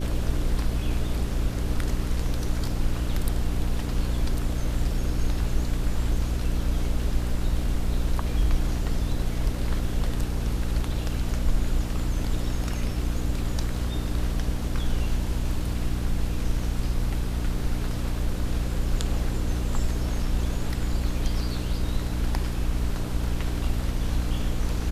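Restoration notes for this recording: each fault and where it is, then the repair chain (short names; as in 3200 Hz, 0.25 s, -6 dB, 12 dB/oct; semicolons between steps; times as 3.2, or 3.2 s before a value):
hum 60 Hz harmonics 5 -29 dBFS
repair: de-hum 60 Hz, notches 5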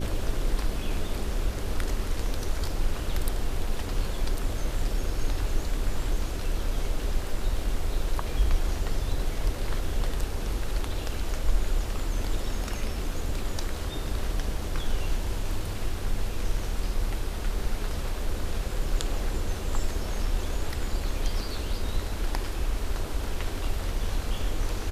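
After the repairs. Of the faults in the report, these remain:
none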